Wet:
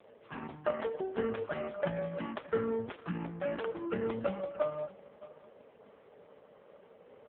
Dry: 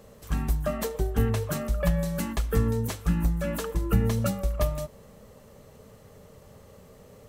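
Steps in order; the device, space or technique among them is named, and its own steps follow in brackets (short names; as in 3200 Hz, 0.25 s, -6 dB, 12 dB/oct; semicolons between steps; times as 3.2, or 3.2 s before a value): satellite phone (BPF 320–3100 Hz; echo 0.619 s -19 dB; AMR-NB 4.75 kbps 8000 Hz)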